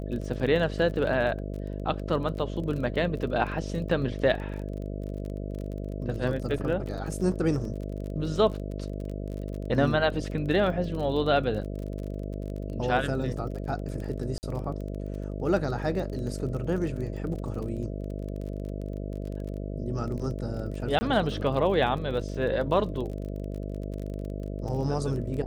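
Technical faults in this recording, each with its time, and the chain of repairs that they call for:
buzz 50 Hz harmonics 13 -34 dBFS
crackle 29 per s -35 dBFS
6.58 s: dropout 2.7 ms
14.38–14.43 s: dropout 49 ms
20.99–21.01 s: dropout 20 ms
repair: de-click; de-hum 50 Hz, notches 13; interpolate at 6.58 s, 2.7 ms; interpolate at 14.38 s, 49 ms; interpolate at 20.99 s, 20 ms

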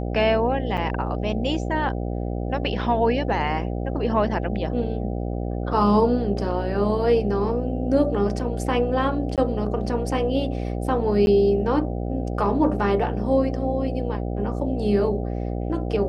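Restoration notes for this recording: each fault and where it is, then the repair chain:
buzz 60 Hz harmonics 13 -27 dBFS
0.77–0.78 s: dropout 6.5 ms
9.36–9.38 s: dropout 17 ms
11.26–11.27 s: dropout 11 ms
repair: de-hum 60 Hz, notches 13; interpolate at 0.77 s, 6.5 ms; interpolate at 9.36 s, 17 ms; interpolate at 11.26 s, 11 ms

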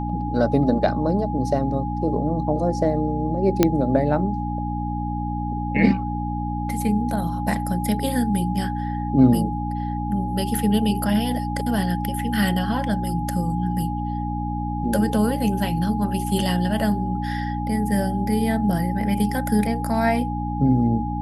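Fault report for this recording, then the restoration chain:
hum 60 Hz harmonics 5 -27 dBFS
whine 830 Hz -29 dBFS
3.63 s: pop -2 dBFS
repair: de-click; band-stop 830 Hz, Q 30; de-hum 60 Hz, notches 5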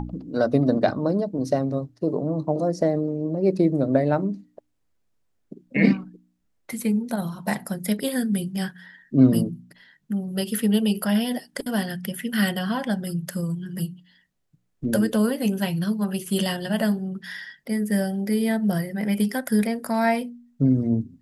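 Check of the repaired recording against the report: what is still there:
nothing left

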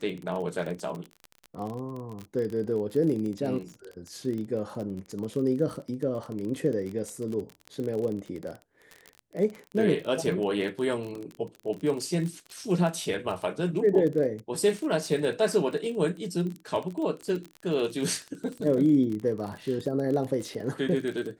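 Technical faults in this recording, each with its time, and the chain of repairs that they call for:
crackle 31 per s -32 dBFS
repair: de-click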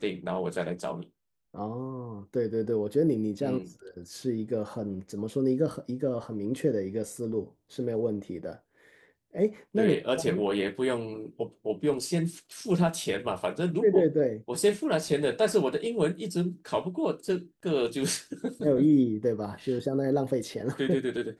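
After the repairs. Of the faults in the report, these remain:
nothing left

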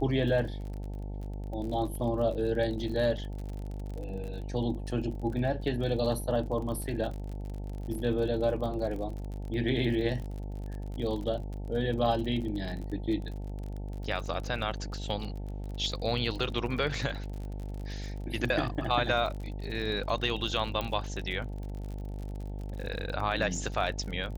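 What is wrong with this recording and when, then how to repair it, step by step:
buzz 50 Hz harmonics 18 -37 dBFS
crackle 41 per s -37 dBFS
20.81 s: pop -18 dBFS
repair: de-click; de-hum 50 Hz, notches 18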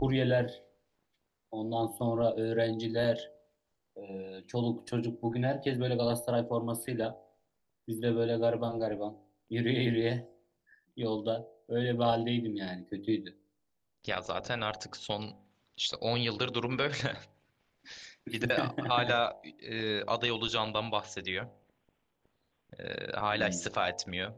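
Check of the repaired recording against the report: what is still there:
nothing left

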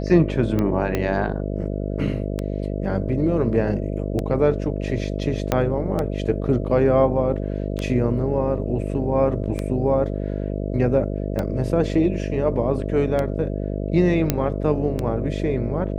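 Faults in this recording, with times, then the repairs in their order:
buzz 50 Hz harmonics 13 -26 dBFS
tick 33 1/3 rpm -12 dBFS
0.95 s: pop -9 dBFS
5.52 s: pop -6 dBFS
14.30 s: pop -4 dBFS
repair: de-click; de-hum 50 Hz, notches 13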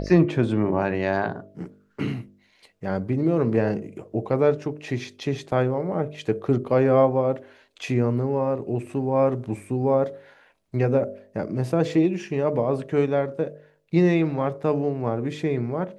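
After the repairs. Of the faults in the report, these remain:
0.95 s: pop
5.52 s: pop

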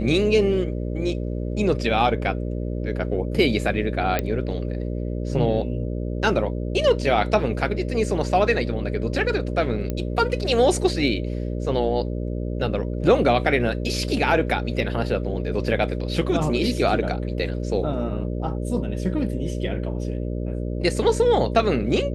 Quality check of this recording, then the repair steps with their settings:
buzz 60 Hz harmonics 10 -27 dBFS
4.19 s: pop -8 dBFS
9.90 s: pop -14 dBFS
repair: de-click; de-hum 60 Hz, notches 10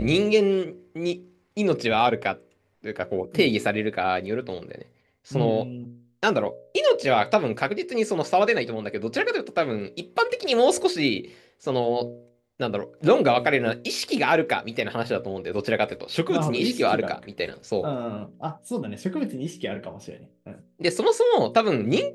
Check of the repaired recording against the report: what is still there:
9.90 s: pop

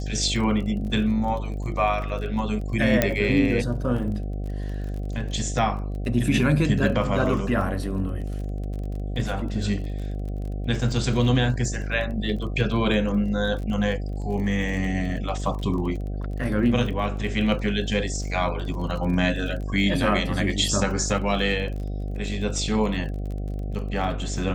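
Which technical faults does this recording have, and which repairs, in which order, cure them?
buzz 50 Hz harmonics 15 -29 dBFS
crackle 28 per s -33 dBFS
3.02 s: pop -4 dBFS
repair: de-click; de-hum 50 Hz, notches 15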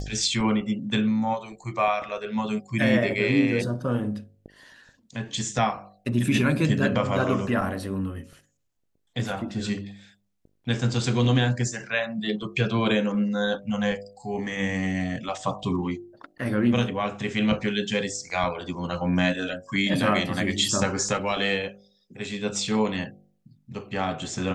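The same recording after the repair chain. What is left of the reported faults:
nothing left

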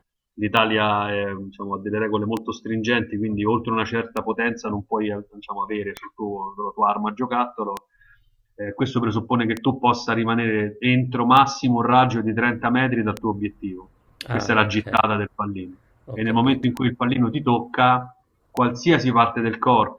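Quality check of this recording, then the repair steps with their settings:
tick 33 1/3 rpm -11 dBFS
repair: de-click

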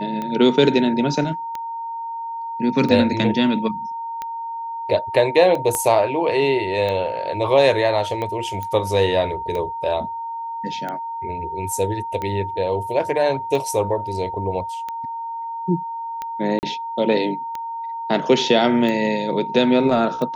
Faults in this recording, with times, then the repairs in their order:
tick 45 rpm -15 dBFS
whine 920 Hz -26 dBFS
5.75 s: pop -10 dBFS
8.63 s: pop -16 dBFS
16.59–16.63 s: dropout 39 ms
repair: de-click; band-stop 920 Hz, Q 30; interpolate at 16.59 s, 39 ms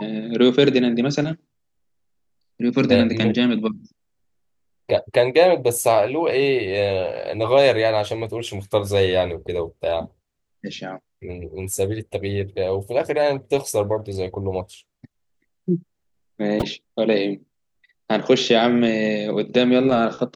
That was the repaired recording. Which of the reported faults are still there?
5.75 s: pop

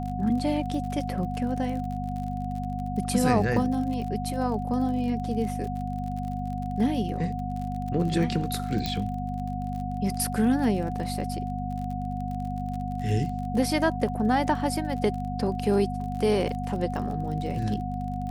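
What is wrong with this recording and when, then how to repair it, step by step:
crackle 41 per s -34 dBFS
hum 50 Hz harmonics 5 -32 dBFS
whine 730 Hz -34 dBFS
8.86 s: pop -14 dBFS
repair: de-click; band-stop 730 Hz, Q 30; de-hum 50 Hz, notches 5

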